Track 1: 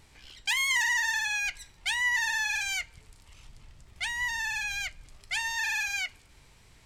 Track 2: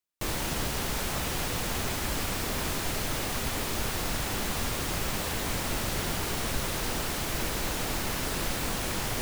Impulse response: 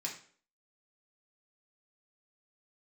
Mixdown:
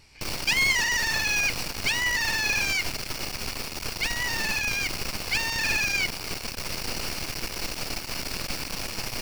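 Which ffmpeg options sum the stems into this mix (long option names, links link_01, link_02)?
-filter_complex "[0:a]volume=0dB[link_01];[1:a]aeval=exprs='max(val(0),0)':channel_layout=same,volume=0.5dB[link_02];[link_01][link_02]amix=inputs=2:normalize=0,superequalizer=12b=2:14b=2.82"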